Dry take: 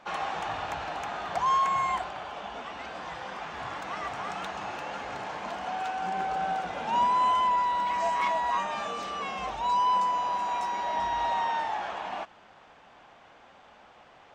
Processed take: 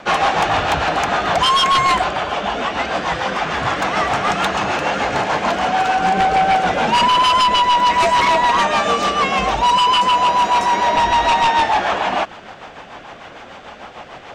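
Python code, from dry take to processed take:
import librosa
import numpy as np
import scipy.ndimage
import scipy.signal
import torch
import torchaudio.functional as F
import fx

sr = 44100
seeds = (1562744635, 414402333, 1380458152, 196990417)

y = fx.rotary(x, sr, hz=6.7)
y = fx.fold_sine(y, sr, drive_db=10, ceiling_db=-18.0)
y = y * 10.0 ** (7.5 / 20.0)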